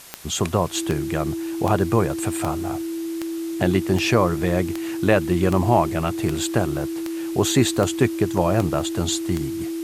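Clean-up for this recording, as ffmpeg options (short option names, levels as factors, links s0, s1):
-af "adeclick=t=4,bandreject=f=330:w=30,afwtdn=0.0079"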